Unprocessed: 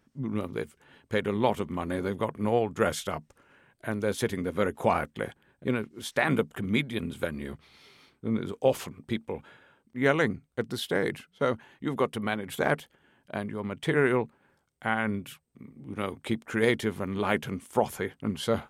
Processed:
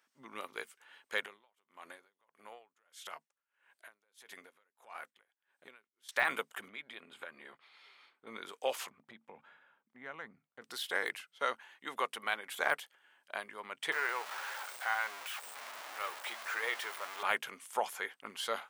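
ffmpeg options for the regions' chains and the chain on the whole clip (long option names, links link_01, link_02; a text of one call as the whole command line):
ffmpeg -i in.wav -filter_complex "[0:a]asettb=1/sr,asplit=3[link_01][link_02][link_03];[link_01]atrim=end=1.254[link_04];[link_02]atrim=start=1.25:end=6.09,asetpts=PTS-STARTPTS,afade=type=in:duration=0.004:curve=qsin,afade=type=out:start_time=4.836:duration=0.004:curve=qsin,acompressor=threshold=-33dB:ratio=16:attack=3.2:release=140:knee=1:detection=peak,aeval=exprs='val(0)*pow(10,-31*(0.5-0.5*cos(2*PI*1.6*n/s))/20)':channel_layout=same[link_05];[link_03]atrim=start=6.086[link_06];[link_04][link_05]acrossfade=duration=0.004:curve1=hsin:curve2=qsin[link_07];[link_07][link_06]acrossfade=duration=0.004:curve1=qsin:curve2=hsin,asettb=1/sr,asplit=3[link_08][link_09][link_10];[link_08]atrim=end=6.684[link_11];[link_09]atrim=start=6.68:end=8.27,asetpts=PTS-STARTPTS,afade=type=in:duration=0.004:curve=qsin,afade=type=out:start_time=1.586:duration=0.004:curve=qsin,bandreject=frequency=5800:width=5.9,acompressor=threshold=-34dB:ratio=4:attack=3.2:release=140:knee=1:detection=peak,aemphasis=mode=reproduction:type=75fm[link_12];[link_10]atrim=start=8.266[link_13];[link_11][link_12]acrossfade=duration=0.004:curve1=hsin:curve2=qsin[link_14];[link_14][link_13]acrossfade=duration=0.004:curve1=qsin:curve2=hsin,asettb=1/sr,asplit=3[link_15][link_16][link_17];[link_15]atrim=end=8.904[link_18];[link_16]atrim=start=8.9:end=10.62,asetpts=PTS-STARTPTS,afade=type=in:duration=0.004:curve=qsin,afade=type=out:start_time=1.716:duration=0.004:curve=qsin,lowpass=frequency=1000:poles=1,lowshelf=frequency=270:width_type=q:width=1.5:gain=8.5,acompressor=threshold=-32dB:ratio=3:attack=3.2:release=140:knee=1:detection=peak[link_19];[link_17]atrim=start=10.616[link_20];[link_18][link_19]acrossfade=duration=0.004:curve1=hsin:curve2=qsin[link_21];[link_21][link_20]acrossfade=duration=0.004:curve1=qsin:curve2=hsin,asettb=1/sr,asplit=3[link_22][link_23][link_24];[link_22]atrim=end=13.924[link_25];[link_23]atrim=start=13.92:end=17.23,asetpts=PTS-STARTPTS,afade=type=in:duration=0.004:curve=qsin,afade=type=out:start_time=3.306:duration=0.004:curve=qsin,aeval=exprs='val(0)+0.5*0.0447*sgn(val(0))':channel_layout=same,highpass=640,asplit=2[link_26][link_27];[link_27]adelay=17,volume=-13dB[link_28];[link_26][link_28]amix=inputs=2:normalize=0,atrim=end_sample=145971[link_29];[link_24]atrim=start=17.226[link_30];[link_25][link_29]acrossfade=duration=0.004:curve1=hsin:curve2=qsin[link_31];[link_31][link_30]acrossfade=duration=0.004:curve1=qsin:curve2=hsin,highpass=1000,deesser=0.85" out.wav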